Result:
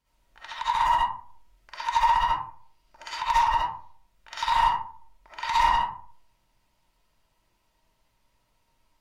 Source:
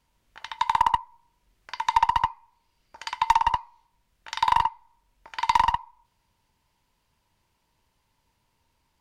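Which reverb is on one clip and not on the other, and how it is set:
comb and all-pass reverb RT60 0.48 s, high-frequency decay 0.45×, pre-delay 25 ms, DRR −9.5 dB
level −8.5 dB

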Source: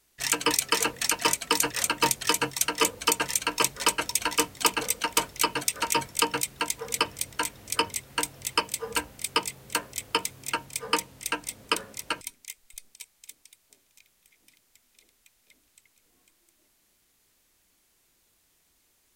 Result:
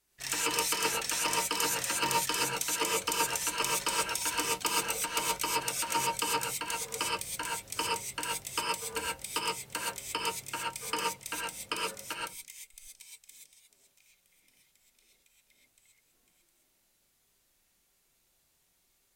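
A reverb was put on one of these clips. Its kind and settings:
reverb whose tail is shaped and stops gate 150 ms rising, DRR −3.5 dB
level −9.5 dB

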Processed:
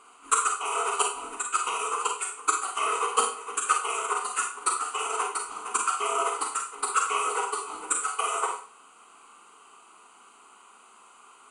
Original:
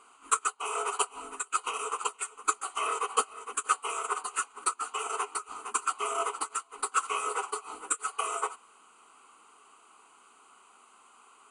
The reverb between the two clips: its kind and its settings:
four-comb reverb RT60 0.39 s, combs from 32 ms, DRR 2 dB
level +2.5 dB

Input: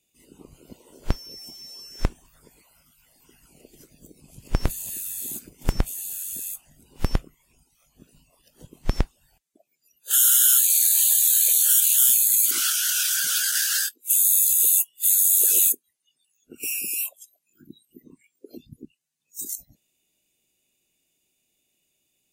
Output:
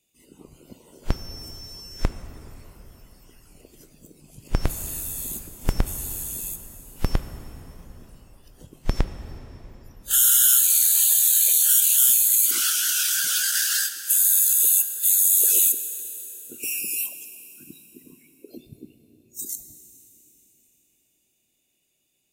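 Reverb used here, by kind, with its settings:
dense smooth reverb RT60 4.3 s, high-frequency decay 0.8×, DRR 9 dB

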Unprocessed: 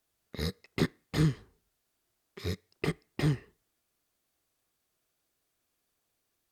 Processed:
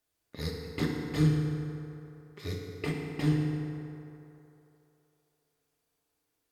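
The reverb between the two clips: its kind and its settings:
feedback delay network reverb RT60 3.1 s, low-frequency decay 0.7×, high-frequency decay 0.5×, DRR −1 dB
level −4 dB

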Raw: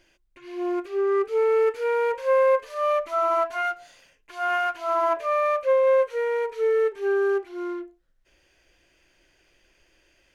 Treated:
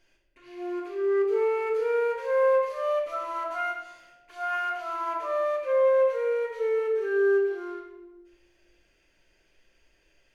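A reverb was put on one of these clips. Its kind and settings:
rectangular room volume 520 cubic metres, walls mixed, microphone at 1.6 metres
level −8 dB

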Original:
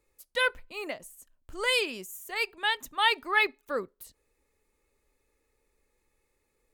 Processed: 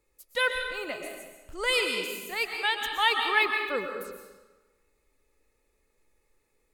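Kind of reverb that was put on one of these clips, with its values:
comb and all-pass reverb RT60 1.2 s, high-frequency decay 0.9×, pre-delay 85 ms, DRR 3 dB

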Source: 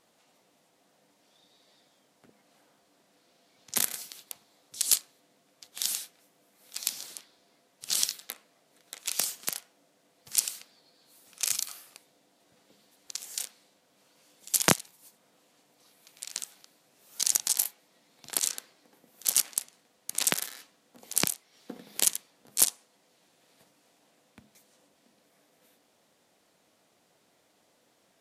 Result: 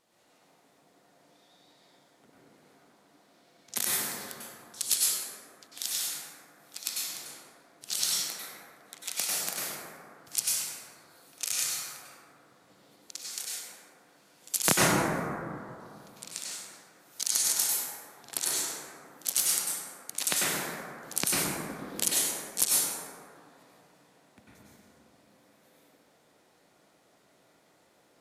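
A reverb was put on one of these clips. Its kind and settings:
dense smooth reverb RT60 2.6 s, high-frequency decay 0.3×, pre-delay 85 ms, DRR −8 dB
level −4.5 dB

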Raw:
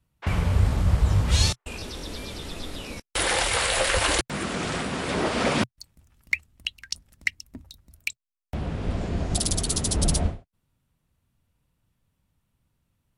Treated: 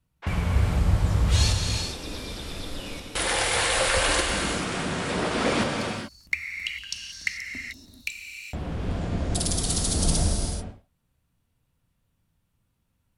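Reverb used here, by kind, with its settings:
reverb whose tail is shaped and stops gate 460 ms flat, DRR 0.5 dB
level −2.5 dB

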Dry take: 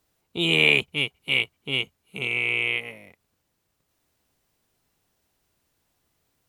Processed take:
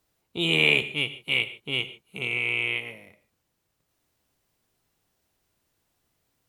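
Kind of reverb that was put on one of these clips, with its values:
reverb whose tail is shaped and stops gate 170 ms flat, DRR 12 dB
level −2 dB

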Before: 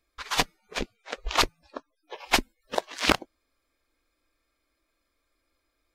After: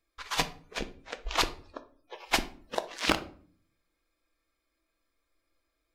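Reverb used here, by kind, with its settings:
rectangular room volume 520 cubic metres, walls furnished, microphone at 0.69 metres
level −4.5 dB

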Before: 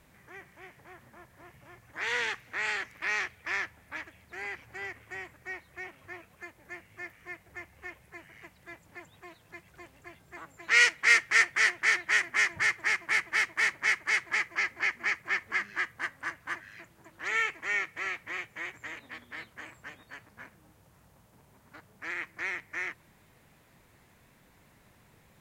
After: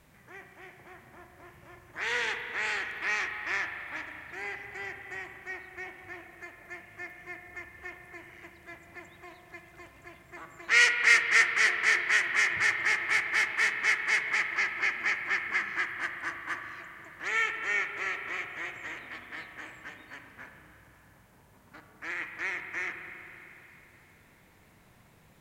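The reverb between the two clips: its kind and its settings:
spring reverb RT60 3.4 s, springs 32/39 ms, chirp 60 ms, DRR 5 dB

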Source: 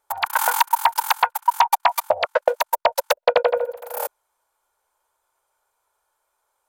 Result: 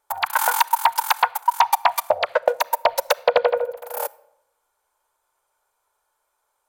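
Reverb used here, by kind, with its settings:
rectangular room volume 2,700 cubic metres, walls furnished, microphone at 0.39 metres

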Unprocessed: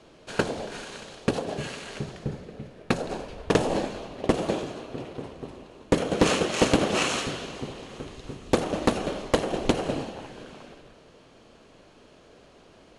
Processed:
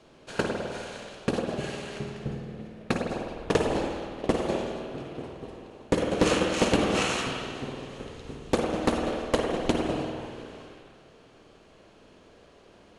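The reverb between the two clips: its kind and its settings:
spring reverb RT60 1.6 s, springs 51 ms, chirp 75 ms, DRR 2.5 dB
level −3 dB

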